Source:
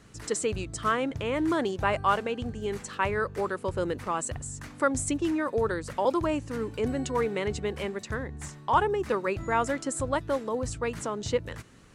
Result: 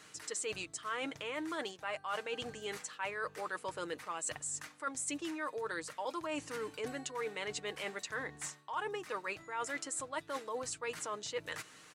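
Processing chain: high-pass 1.3 kHz 6 dB/octave; comb 6.5 ms, depth 42%; reverse; compression 6:1, threshold -41 dBFS, peak gain reduction 18.5 dB; reverse; trim +4.5 dB

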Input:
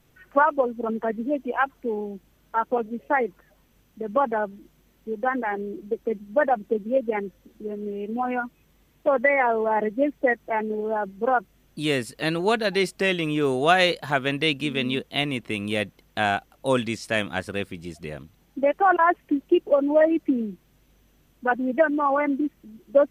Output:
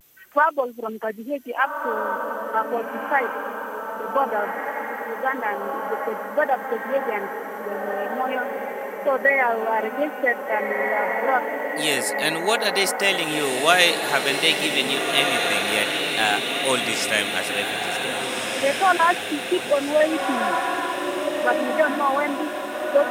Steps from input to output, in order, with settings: RIAA curve recording; vibrato 0.63 Hz 51 cents; echo that smears into a reverb 1645 ms, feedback 57%, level -3.5 dB; trim +1 dB

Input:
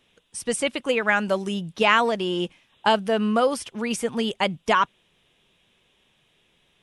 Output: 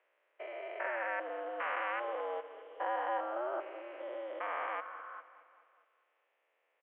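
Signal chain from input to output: spectrogram pixelated in time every 400 ms; feedback delay 208 ms, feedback 55%, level -15 dB; mistuned SSB +110 Hz 350–2200 Hz; trim -6.5 dB

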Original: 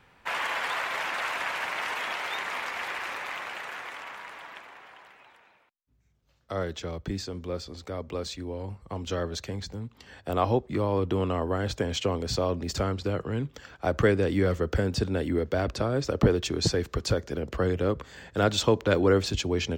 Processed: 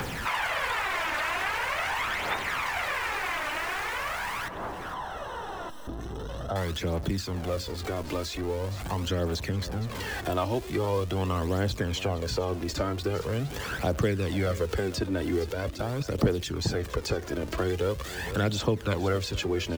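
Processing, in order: jump at every zero crossing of -35.5 dBFS; 4.48–6.56 s: boxcar filter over 19 samples; 15.52–16.18 s: level held to a coarse grid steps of 15 dB; phaser 0.43 Hz, delay 3.4 ms, feedback 53%; delay 460 ms -19 dB; three bands compressed up and down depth 70%; trim -3.5 dB

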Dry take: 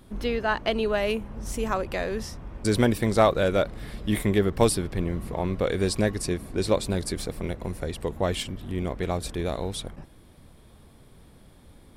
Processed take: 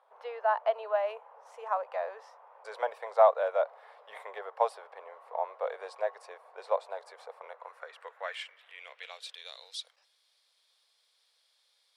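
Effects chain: elliptic high-pass 480 Hz, stop band 40 dB; band-pass sweep 880 Hz -> 4.6 kHz, 7.30–9.74 s; dynamic bell 650 Hz, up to +6 dB, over -46 dBFS, Q 5.4; trim +1 dB

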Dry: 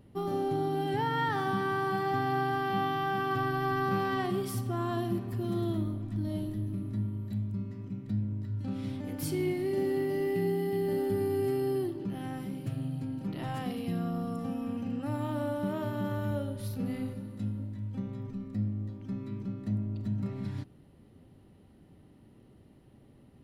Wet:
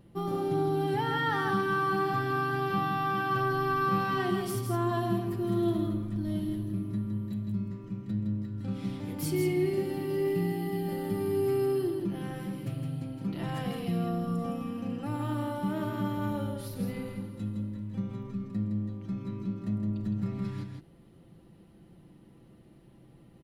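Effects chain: comb 5.9 ms, depth 51%; on a send: delay 163 ms -5.5 dB

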